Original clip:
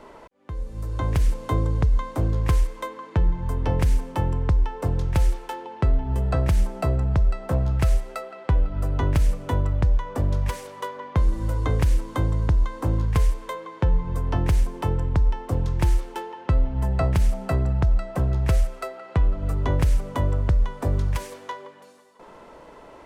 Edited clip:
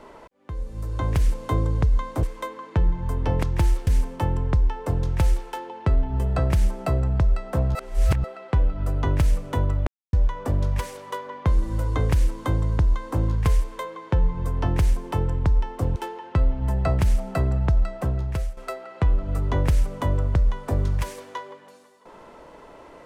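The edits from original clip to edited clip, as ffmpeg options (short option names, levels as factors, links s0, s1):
-filter_complex "[0:a]asplit=9[s0][s1][s2][s3][s4][s5][s6][s7][s8];[s0]atrim=end=2.232[s9];[s1]atrim=start=2.628:end=3.832[s10];[s2]atrim=start=15.658:end=16.102[s11];[s3]atrim=start=3.828:end=7.712[s12];[s4]atrim=start=7.708:end=8.202,asetpts=PTS-STARTPTS,areverse[s13];[s5]atrim=start=8.198:end=9.83,asetpts=PTS-STARTPTS,afade=t=out:st=1.628:d=0.004:c=hsin,apad=pad_dur=0.26[s14];[s6]atrim=start=9.83:end=15.662,asetpts=PTS-STARTPTS,afade=t=in:d=0.004:c=hsin[s15];[s7]atrim=start=16.098:end=18.71,asetpts=PTS-STARTPTS,afade=t=out:st=1.962:d=0.65:silence=0.251189[s16];[s8]atrim=start=18.71,asetpts=PTS-STARTPTS,afade=t=in:d=0.004:c=hsin:silence=0.251189[s17];[s9][s10]acrossfade=d=0.004:c1=hsin:c2=hsin[s18];[s18][s11]acrossfade=d=0.004:c1=hsin:c2=hsin[s19];[s19][s12]acrossfade=d=0.004:c1=hsin:c2=hsin[s20];[s20][s13]acrossfade=d=0.004:c1=hsin:c2=hsin[s21];[s14][s15]concat=n=2:v=0:a=1[s22];[s21][s22]acrossfade=d=0.004:c1=hsin:c2=hsin[s23];[s16][s17]concat=n=2:v=0:a=1[s24];[s23][s24]acrossfade=d=0.004:c1=hsin:c2=hsin"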